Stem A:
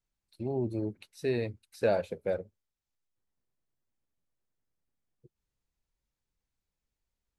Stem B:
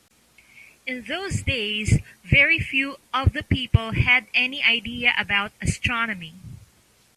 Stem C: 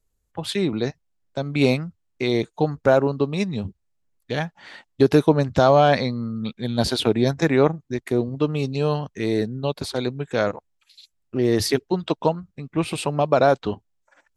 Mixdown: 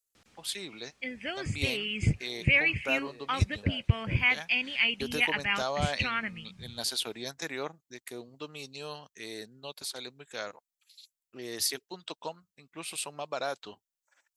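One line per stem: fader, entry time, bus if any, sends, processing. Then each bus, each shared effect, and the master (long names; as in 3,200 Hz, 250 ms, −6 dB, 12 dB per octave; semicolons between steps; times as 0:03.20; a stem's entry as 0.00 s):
−17.0 dB, 1.80 s, no send, meter weighting curve A
−0.5 dB, 0.15 s, no send, low-pass filter 6,300 Hz 12 dB per octave; automatic ducking −7 dB, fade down 0.85 s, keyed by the third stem
−14.5 dB, 0.00 s, no send, spectral tilt +4.5 dB per octave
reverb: not used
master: no processing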